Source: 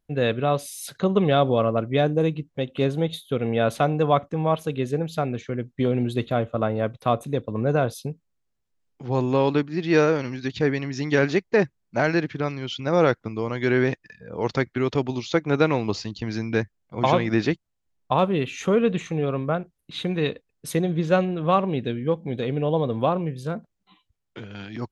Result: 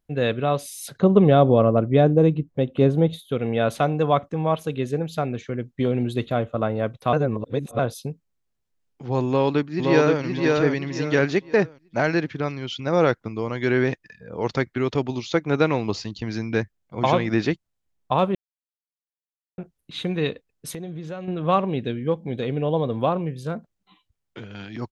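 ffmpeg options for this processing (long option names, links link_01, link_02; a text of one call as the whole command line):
ffmpeg -i in.wav -filter_complex "[0:a]asettb=1/sr,asplit=3[link_01][link_02][link_03];[link_01]atrim=end=0.884[link_04];[link_02]atrim=start=0.88:end=3.19,asetpts=PTS-STARTPTS,afade=type=in:duration=0.004:curve=qsin,afade=type=out:start_time=2.306:duration=0.004:curve=qsin,tiltshelf=frequency=1200:gain=6[link_05];[link_03]atrim=start=3.186[link_06];[link_04][link_05]acrossfade=duration=0.004:curve1=hsin:curve2=qsin[link_07];[link_07][link_06]acrossfade=duration=0.004:curve1=qsin:curve2=hsin,asplit=2[link_08][link_09];[link_09]afade=type=in:start_time=9.27:duration=0.01,afade=type=out:start_time=10.22:duration=0.01,aecho=0:1:520|1040|1560|2080:0.749894|0.224968|0.0674905|0.0202471[link_10];[link_08][link_10]amix=inputs=2:normalize=0,asettb=1/sr,asplit=3[link_11][link_12][link_13];[link_11]atrim=end=20.704[link_14];[link_12]atrim=start=20.7:end=21.28,asetpts=PTS-STARTPTS,afade=type=in:duration=0.004:curve=qsin,afade=type=out:start_time=0.576:duration=0.004:curve=qsin,acompressor=threshold=-31dB:ratio=5:attack=3.2:release=140:knee=1:detection=peak[link_15];[link_13]atrim=start=21.276[link_16];[link_14][link_15]acrossfade=duration=0.004:curve1=hsin:curve2=qsin[link_17];[link_17][link_16]acrossfade=duration=0.004:curve1=qsin:curve2=hsin,asplit=5[link_18][link_19][link_20][link_21][link_22];[link_18]atrim=end=7.132[link_23];[link_19]atrim=start=7.128:end=7.792,asetpts=PTS-STARTPTS,areverse[link_24];[link_20]atrim=start=7.788:end=18.35,asetpts=PTS-STARTPTS,afade=type=out:start_time=10.558:duration=0.004:curve=hsin[link_25];[link_21]atrim=start=18.35:end=19.58,asetpts=PTS-STARTPTS,volume=0[link_26];[link_22]atrim=start=19.58,asetpts=PTS-STARTPTS,afade=type=in:duration=0.004:curve=hsin[link_27];[link_23][link_24]acrossfade=duration=0.004:curve1=hsin:curve2=hsin[link_28];[link_25][link_26][link_27]concat=n=3:v=0:a=1[link_29];[link_28][link_29]acrossfade=duration=0.004:curve1=hsin:curve2=hsin" out.wav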